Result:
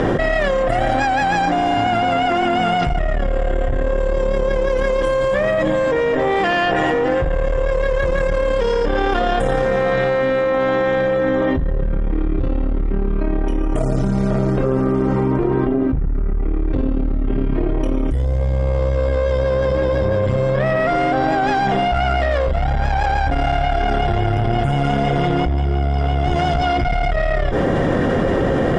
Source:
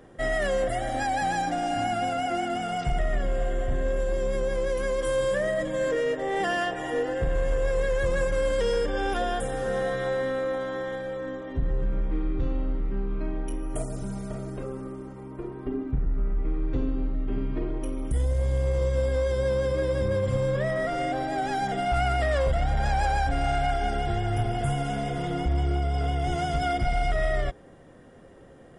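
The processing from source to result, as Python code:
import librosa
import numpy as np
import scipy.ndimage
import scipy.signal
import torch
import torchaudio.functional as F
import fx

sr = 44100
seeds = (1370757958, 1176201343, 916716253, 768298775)

y = fx.tube_stage(x, sr, drive_db=21.0, bias=0.7)
y = fx.air_absorb(y, sr, metres=120.0)
y = fx.env_flatten(y, sr, amount_pct=100)
y = y * librosa.db_to_amplitude(8.0)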